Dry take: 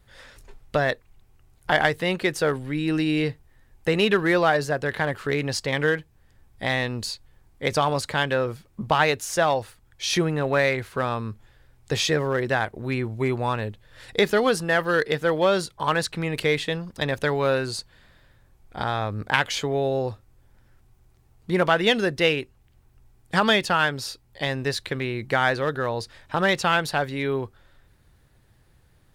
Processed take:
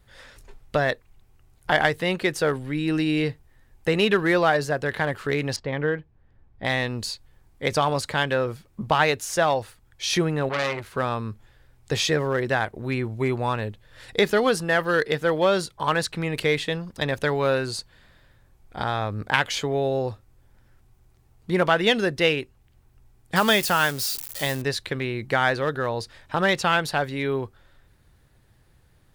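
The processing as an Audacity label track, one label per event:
5.560000	6.650000	tape spacing loss at 10 kHz 34 dB
10.490000	10.920000	transformer saturation saturates under 2.2 kHz
23.360000	24.620000	zero-crossing glitches of -22.5 dBFS

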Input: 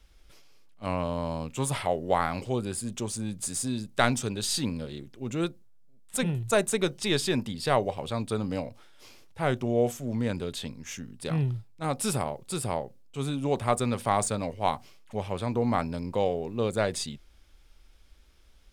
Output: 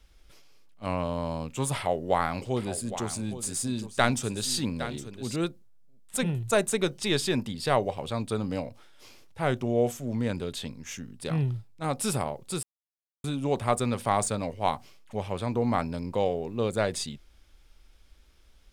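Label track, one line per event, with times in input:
1.750000	5.360000	delay 813 ms -12 dB
12.630000	13.240000	mute

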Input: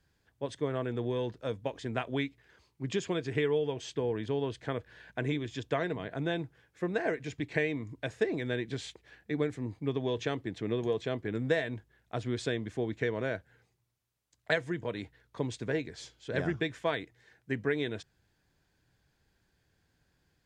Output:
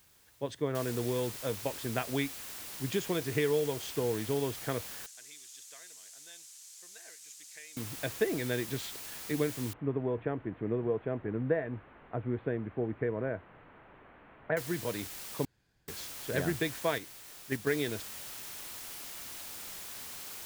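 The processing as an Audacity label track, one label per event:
0.750000	0.750000	noise floor step -64 dB -44 dB
5.060000	7.770000	band-pass filter 7 kHz, Q 2.2
9.730000	14.570000	Gaussian low-pass sigma 4.9 samples
15.450000	15.880000	room tone
16.980000	17.670000	gate -33 dBFS, range -6 dB

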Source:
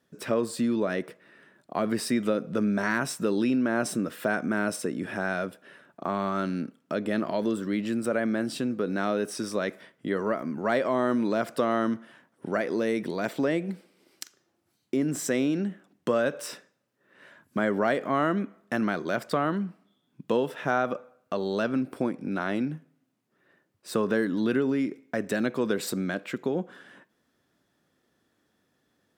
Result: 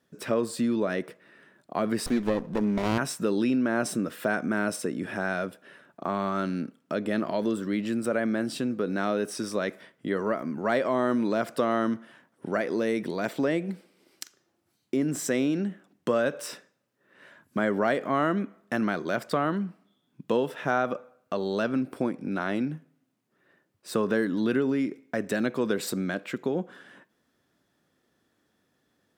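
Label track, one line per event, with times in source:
2.060000	2.980000	sliding maximum over 17 samples

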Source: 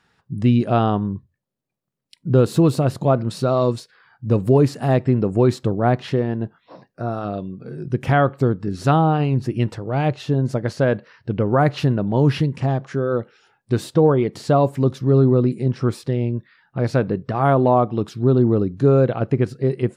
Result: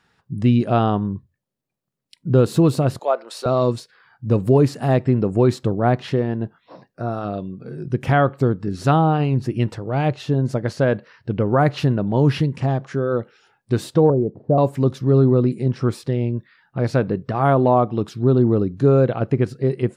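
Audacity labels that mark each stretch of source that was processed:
2.990000	3.460000	high-pass 490 Hz 24 dB/octave
14.100000	14.580000	Chebyshev low-pass 650 Hz, order 3

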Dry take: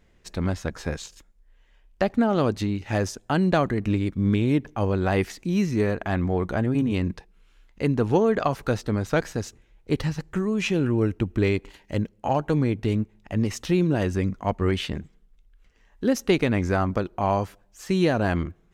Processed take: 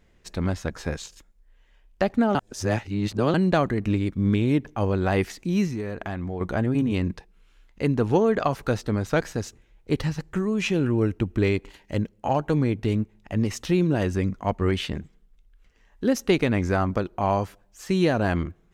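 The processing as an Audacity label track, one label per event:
2.350000	3.340000	reverse
5.670000	6.410000	compression 4:1, threshold -27 dBFS

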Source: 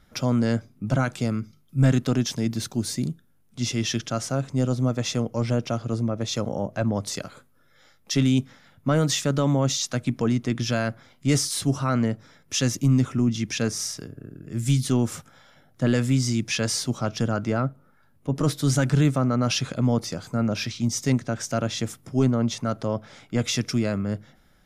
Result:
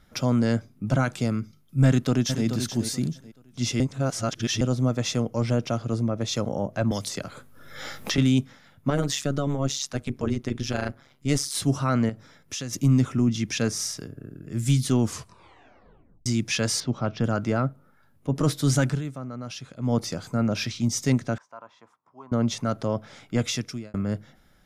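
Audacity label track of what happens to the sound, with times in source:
1.860000	2.450000	echo throw 430 ms, feedback 25%, level -8.5 dB
3.800000	4.610000	reverse
6.910000	8.180000	three bands compressed up and down depth 100%
8.900000	11.550000	AM modulator 140 Hz, depth 75%
12.090000	12.730000	compression, threshold -29 dBFS
15.000000	15.000000	tape stop 1.26 s
16.800000	17.240000	distance through air 210 m
18.850000	19.950000	dip -13 dB, fades 0.16 s
21.380000	22.320000	band-pass filter 1 kHz, Q 7.8
23.380000	23.940000	fade out

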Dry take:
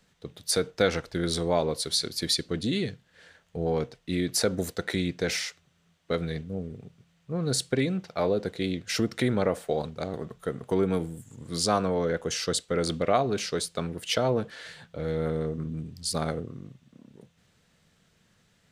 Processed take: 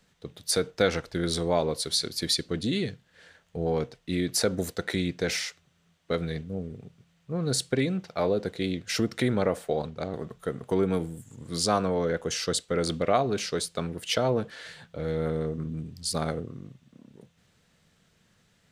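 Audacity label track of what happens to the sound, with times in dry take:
9.680000	10.160000	treble shelf 7.9 kHz -10 dB

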